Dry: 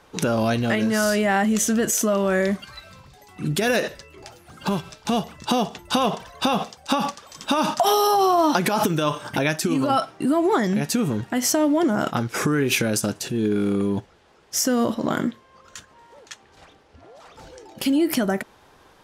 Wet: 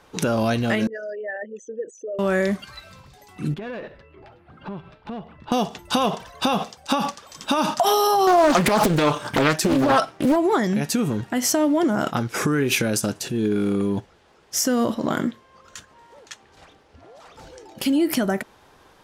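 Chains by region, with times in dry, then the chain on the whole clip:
0.87–2.19 formant sharpening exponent 3 + vowel filter e + bell 3400 Hz +12 dB 0.33 oct
3.54–5.52 air absorption 450 m + compressor 1.5:1, threshold -39 dBFS + tube stage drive 25 dB, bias 0.4
8.27–10.36 sample leveller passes 1 + Doppler distortion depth 0.75 ms
whole clip: dry

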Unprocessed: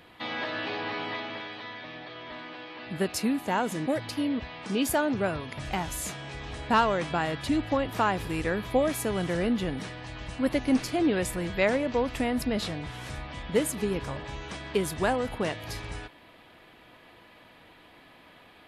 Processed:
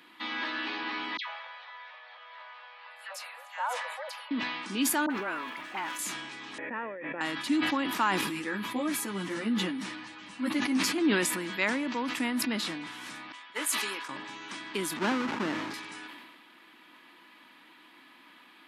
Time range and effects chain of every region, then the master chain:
1.17–4.31 brick-wall FIR high-pass 490 Hz + high shelf 2100 Hz -12 dB + dispersion lows, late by 0.114 s, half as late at 1600 Hz
5.06–5.99 zero-crossing step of -42.5 dBFS + three-band isolator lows -13 dB, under 350 Hz, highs -12 dB, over 2800 Hz + dispersion highs, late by 45 ms, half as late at 1200 Hz
6.58–7.21 vocal tract filter e + air absorption 210 m + fast leveller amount 100%
8.21–10.98 low shelf 170 Hz +8 dB + ensemble effect
13.32–14.09 HPF 720 Hz + doubler 21 ms -13.5 dB + three-band expander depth 70%
14.97–15.74 half-waves squared off + tape spacing loss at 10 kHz 24 dB
whole clip: HPF 240 Hz 24 dB/oct; band shelf 550 Hz -12 dB 1.1 oct; sustainer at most 36 dB/s

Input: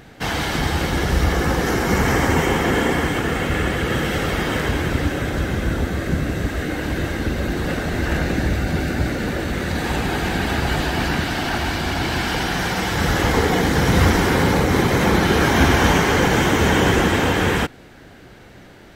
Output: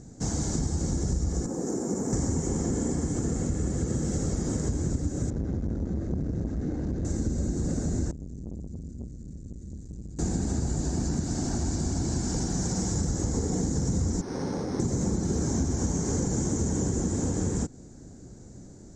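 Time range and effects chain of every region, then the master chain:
1.46–2.13 HPF 290 Hz + bell 3600 Hz -14 dB 2.5 oct
5.3–7.05 air absorption 230 m + core saturation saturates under 490 Hz
8.11–10.19 passive tone stack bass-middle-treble 10-0-1 + core saturation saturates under 420 Hz
14.21–14.8 HPF 700 Hz 6 dB/oct + decimation joined by straight lines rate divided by 6×
whole clip: EQ curve 240 Hz 0 dB, 3000 Hz -29 dB, 7200 Hz +10 dB, 11000 Hz -27 dB; compressor, threshold -24 dBFS

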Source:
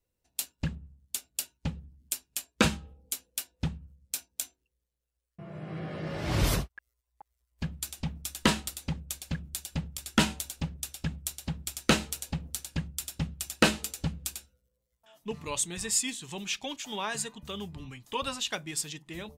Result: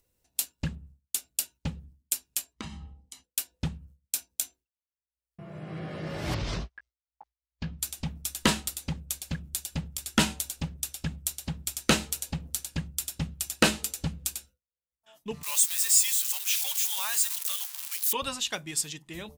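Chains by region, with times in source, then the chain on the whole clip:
2.53–3.24 comb 1 ms, depth 68% + compressor 5:1, threshold -37 dBFS + air absorption 78 m
6.34–7.79 LPF 5600 Hz 24 dB/oct + doubler 18 ms -10 dB + compressor 12:1, threshold -27 dBFS
15.43–18.13 switching spikes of -25 dBFS + Bessel high-pass 1100 Hz, order 8
whole clip: high shelf 5400 Hz +5.5 dB; expander -48 dBFS; upward compressor, threshold -45 dBFS

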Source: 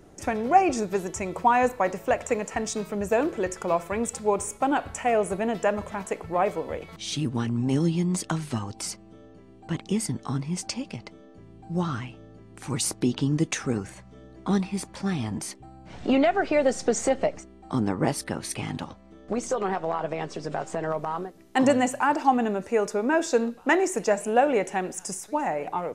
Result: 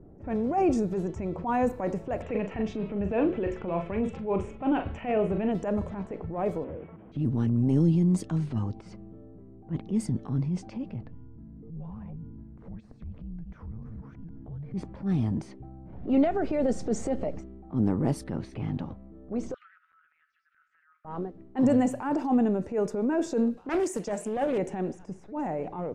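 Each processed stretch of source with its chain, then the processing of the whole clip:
2.22–5.52 synth low-pass 2800 Hz, resonance Q 2.8 + doubler 41 ms -9.5 dB
6.64–7.12 delta modulation 16 kbps, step -48.5 dBFS + HPF 240 Hz 6 dB/oct
11.03–14.74 reverse delay 0.468 s, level -10 dB + compressor 12:1, threshold -37 dBFS + frequency shift -330 Hz
19.54–21.05 Chebyshev high-pass 1300 Hz, order 8 + high shelf 3300 Hz -6 dB + compressor 8:1, threshold -44 dBFS
23.57–24.58 tilt +2.5 dB/oct + Doppler distortion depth 0.26 ms
whole clip: transient shaper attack -9 dB, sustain +3 dB; low-pass opened by the level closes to 1100 Hz, open at -23 dBFS; tilt shelf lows +9 dB, about 660 Hz; gain -4.5 dB

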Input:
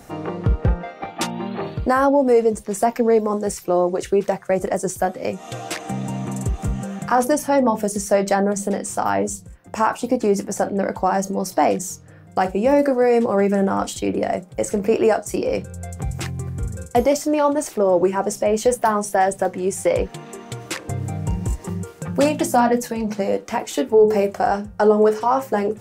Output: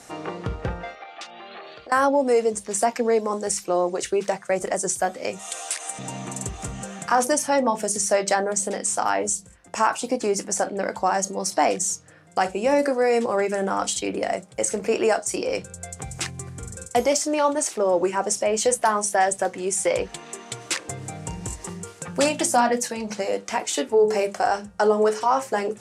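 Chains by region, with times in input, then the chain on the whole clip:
0.95–1.92 three-band isolator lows -21 dB, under 410 Hz, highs -20 dB, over 5900 Hz + compressor 8:1, threshold -33 dBFS + Butterworth band-stop 950 Hz, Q 6.7
5.39–5.99 HPF 610 Hz + bell 9400 Hz +14.5 dB 0.61 oct + compressor 2.5:1, threshold -30 dBFS
whole clip: LPF 9800 Hz 24 dB/oct; tilt +2.5 dB/oct; notches 50/100/150/200 Hz; gain -1.5 dB

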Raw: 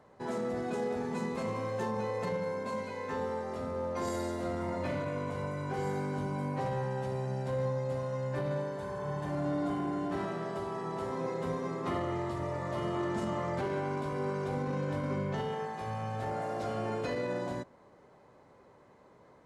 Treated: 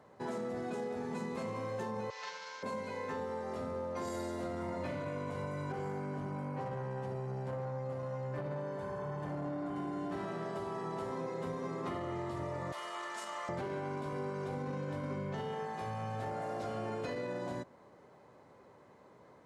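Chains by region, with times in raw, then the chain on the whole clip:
2.1–2.63 CVSD 32 kbps + HPF 1400 Hz + comb 6.9 ms, depth 66%
5.72–9.76 high shelf 3600 Hz -7 dB + notch 3800 Hz, Q 13 + core saturation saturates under 400 Hz
12.72–13.49 HPF 1000 Hz + high shelf 4600 Hz +6 dB
whole clip: HPF 72 Hz; compressor, threshold -35 dBFS

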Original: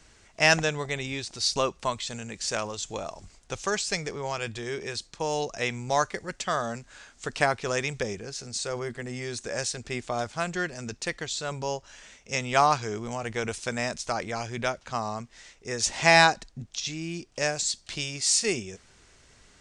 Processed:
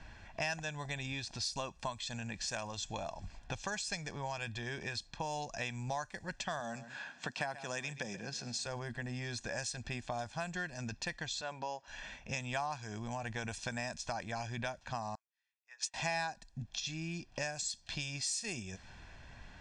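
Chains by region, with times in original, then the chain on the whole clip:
6.6–8.66 HPF 140 Hz 24 dB/oct + echo 0.131 s -17 dB
11.41–11.88 HPF 290 Hz + air absorption 89 m
15.15–15.94 Bessel high-pass 1400 Hz, order 4 + upward expander 2.5:1, over -48 dBFS
whole clip: low-pass opened by the level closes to 2700 Hz, open at -23.5 dBFS; comb 1.2 ms, depth 64%; compressor 4:1, threshold -42 dBFS; gain +3 dB

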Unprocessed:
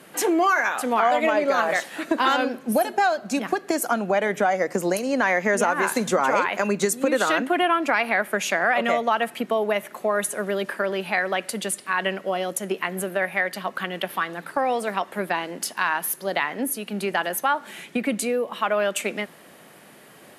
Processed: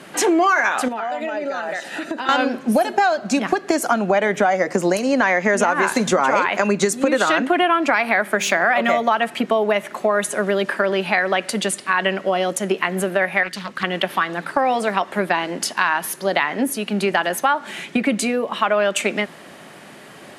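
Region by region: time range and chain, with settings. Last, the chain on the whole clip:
0.88–2.29 compressor 4:1, threshold -31 dBFS + notch comb 1100 Hz
7.91–9.19 notch 2800 Hz, Q 22 + de-hum 98.41 Hz, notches 5 + careless resampling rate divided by 2×, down none, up zero stuff
13.43–13.83 bell 740 Hz -13 dB 2 oct + Doppler distortion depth 0.47 ms
whole clip: LPF 8000 Hz 12 dB/oct; notch 480 Hz, Q 12; compressor 2:1, threshold -24 dBFS; gain +8 dB

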